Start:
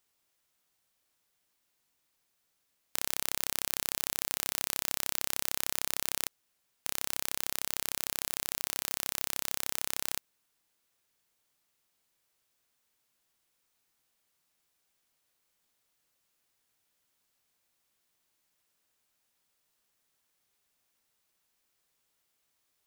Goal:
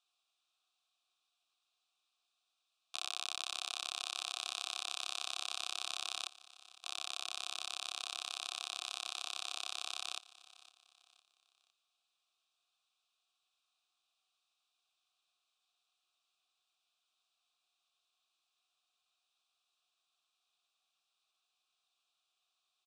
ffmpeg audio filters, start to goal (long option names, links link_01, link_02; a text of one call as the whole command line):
ffmpeg -i in.wav -filter_complex "[0:a]highshelf=frequency=3900:gain=8.5,asplit=2[link_01][link_02];[link_02]asetrate=52444,aresample=44100,atempo=0.840896,volume=-7dB[link_03];[link_01][link_03]amix=inputs=2:normalize=0,crystalizer=i=7.5:c=0,asplit=3[link_04][link_05][link_06];[link_04]bandpass=frequency=730:width_type=q:width=8,volume=0dB[link_07];[link_05]bandpass=frequency=1090:width_type=q:width=8,volume=-6dB[link_08];[link_06]bandpass=frequency=2440:width_type=q:width=8,volume=-9dB[link_09];[link_07][link_08][link_09]amix=inputs=3:normalize=0,highpass=300,equalizer=frequency=350:width_type=q:width=4:gain=9,equalizer=frequency=550:width_type=q:width=4:gain=-8,equalizer=frequency=1300:width_type=q:width=4:gain=6,equalizer=frequency=2200:width_type=q:width=4:gain=-6,equalizer=frequency=3700:width_type=q:width=4:gain=10,equalizer=frequency=6700:width_type=q:width=4:gain=-4,lowpass=frequency=8100:width=0.5412,lowpass=frequency=8100:width=1.3066,aecho=1:1:508|1016|1524:0.112|0.0449|0.018,volume=-1.5dB" out.wav